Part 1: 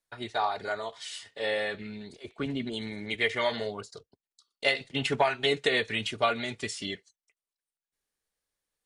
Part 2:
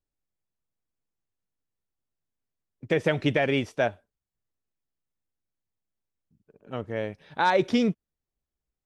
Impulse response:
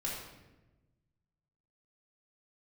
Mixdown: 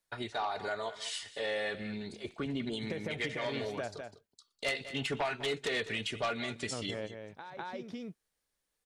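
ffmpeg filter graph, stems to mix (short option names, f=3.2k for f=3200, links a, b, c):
-filter_complex "[0:a]aeval=exprs='0.299*sin(PI/2*2.24*val(0)/0.299)':c=same,volume=-9dB,asplit=3[a][b][c];[b]volume=-17dB[d];[1:a]acompressor=threshold=-29dB:ratio=5,volume=1.5dB,asplit=2[e][f];[f]volume=-12.5dB[g];[c]apad=whole_len=390696[h];[e][h]sidechaingate=range=-18dB:threshold=-47dB:ratio=16:detection=peak[i];[d][g]amix=inputs=2:normalize=0,aecho=0:1:201:1[j];[a][i][j]amix=inputs=3:normalize=0,alimiter=level_in=2.5dB:limit=-24dB:level=0:latency=1:release=312,volume=-2.5dB"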